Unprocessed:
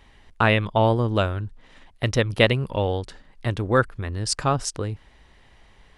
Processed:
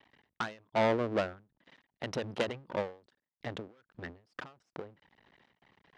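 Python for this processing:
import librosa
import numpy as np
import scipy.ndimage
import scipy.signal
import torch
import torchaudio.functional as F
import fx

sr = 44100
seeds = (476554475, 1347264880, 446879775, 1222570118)

y = fx.envelope_sharpen(x, sr, power=1.5)
y = fx.cheby_harmonics(y, sr, harmonics=(3, 4, 5, 7), levels_db=(-17, -13, -24, -35), full_scale_db=-3.0)
y = np.maximum(y, 0.0)
y = fx.bandpass_edges(y, sr, low_hz=210.0, high_hz=5000.0)
y = fx.end_taper(y, sr, db_per_s=160.0)
y = y * 10.0 ** (3.5 / 20.0)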